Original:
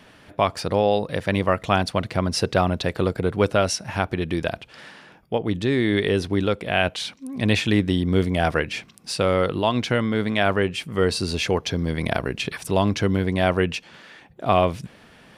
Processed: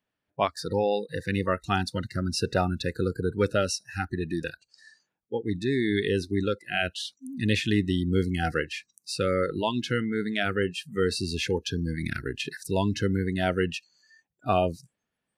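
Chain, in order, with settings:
noise reduction from a noise print of the clip's start 30 dB
level −4.5 dB

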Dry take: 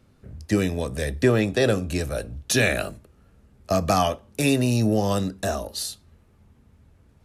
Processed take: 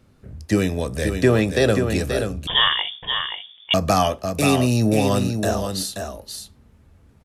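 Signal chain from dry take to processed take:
single-tap delay 530 ms −6.5 dB
0:02.47–0:03.74: voice inversion scrambler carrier 3,500 Hz
level +2.5 dB

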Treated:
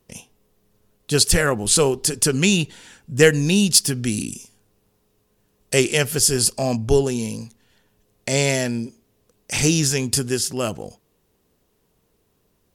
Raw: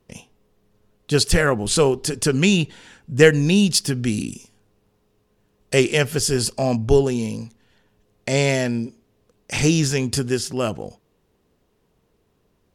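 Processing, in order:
high-shelf EQ 6,100 Hz +12 dB
level −1.5 dB

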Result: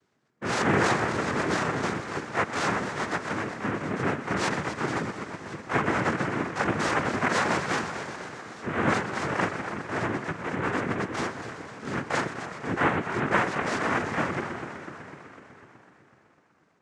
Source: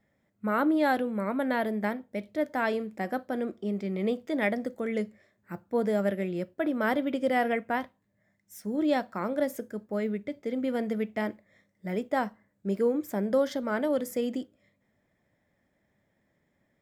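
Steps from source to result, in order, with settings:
pitch-shifted copies added +12 semitones −2 dB
on a send: echo machine with several playback heads 125 ms, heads first and second, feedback 72%, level −13 dB
on the sum: cochlear-implant simulation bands 3
high-frequency loss of the air 61 metres
level −1 dB

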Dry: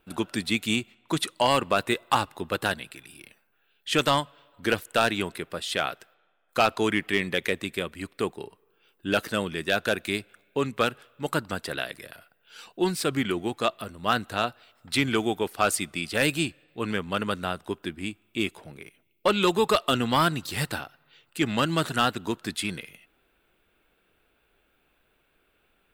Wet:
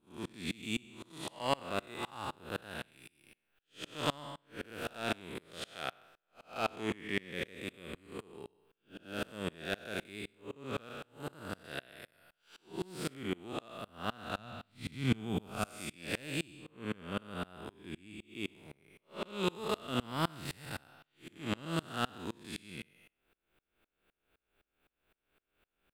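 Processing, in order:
spectrum smeared in time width 227 ms
0:14.38–0:15.66: low shelf with overshoot 250 Hz +7.5 dB, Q 1.5
tremolo with a ramp in dB swelling 3.9 Hz, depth 29 dB

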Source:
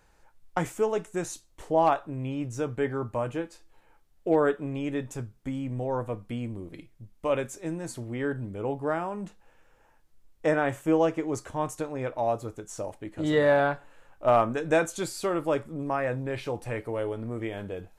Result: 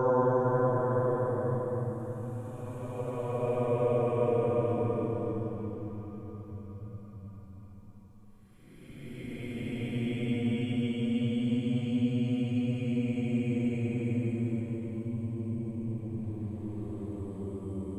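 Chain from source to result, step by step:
dynamic equaliser 340 Hz, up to +4 dB, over −35 dBFS, Q 0.7
extreme stretch with random phases 29×, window 0.10 s, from 0:05.97

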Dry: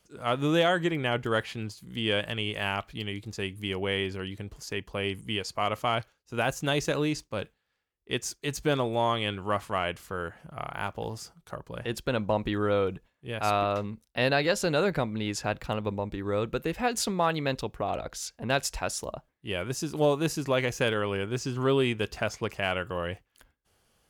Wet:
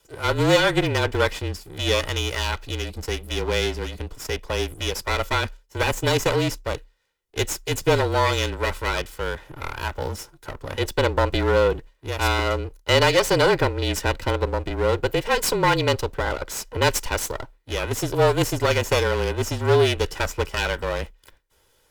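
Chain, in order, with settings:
lower of the sound and its delayed copy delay 2.2 ms
change of speed 1.1×
frequency shifter −34 Hz
level +8 dB

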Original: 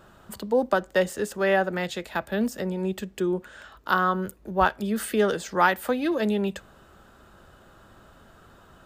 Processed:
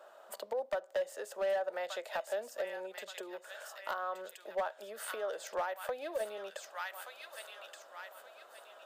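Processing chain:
in parallel at −7.5 dB: soft clipping −17.5 dBFS, distortion −13 dB
on the sum: delay with a high-pass on its return 1,175 ms, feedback 35%, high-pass 2,000 Hz, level −4.5 dB
downward compressor 8 to 1, threshold −27 dBFS, peak gain reduction 14.5 dB
four-pole ladder high-pass 540 Hz, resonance 65%
hard clipping −30 dBFS, distortion −15 dB
level +1.5 dB

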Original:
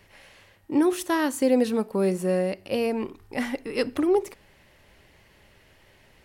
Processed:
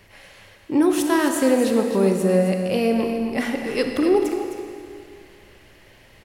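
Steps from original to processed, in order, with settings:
notch filter 910 Hz, Q 28
in parallel at −3 dB: brickwall limiter −20 dBFS, peak gain reduction 10 dB
on the sum: single-tap delay 261 ms −9.5 dB
four-comb reverb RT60 2.3 s, combs from 27 ms, DRR 5 dB

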